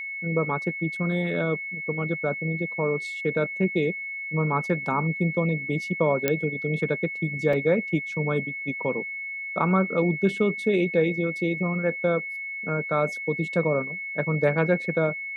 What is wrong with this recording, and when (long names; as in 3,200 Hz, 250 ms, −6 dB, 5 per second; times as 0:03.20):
whistle 2,200 Hz −31 dBFS
0:06.28: click −7 dBFS
0:07.53: drop-out 3.5 ms